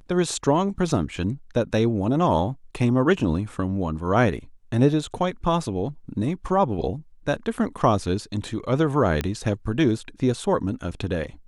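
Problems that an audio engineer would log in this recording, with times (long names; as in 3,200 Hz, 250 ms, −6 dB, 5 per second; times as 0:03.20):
0:09.21: click −11 dBFS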